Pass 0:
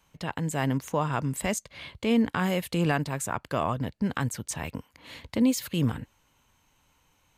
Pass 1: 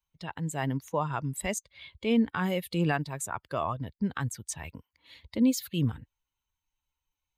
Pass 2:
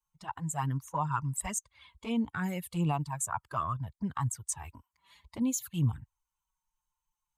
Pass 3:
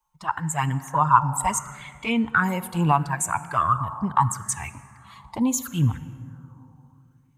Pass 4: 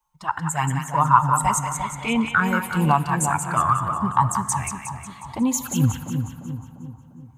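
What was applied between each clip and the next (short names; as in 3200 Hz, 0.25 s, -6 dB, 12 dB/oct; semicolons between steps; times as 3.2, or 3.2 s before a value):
per-bin expansion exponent 1.5
envelope flanger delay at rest 5.7 ms, full sweep at -23.5 dBFS; ten-band EQ 125 Hz +3 dB, 250 Hz -5 dB, 500 Hz -11 dB, 1000 Hz +11 dB, 2000 Hz -5 dB, 4000 Hz -8 dB, 8000 Hz +8 dB
plate-style reverb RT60 3.1 s, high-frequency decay 0.4×, DRR 13 dB; LFO bell 0.74 Hz 850–2300 Hz +13 dB; gain +7 dB
split-band echo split 880 Hz, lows 0.348 s, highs 0.181 s, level -6 dB; gain +1 dB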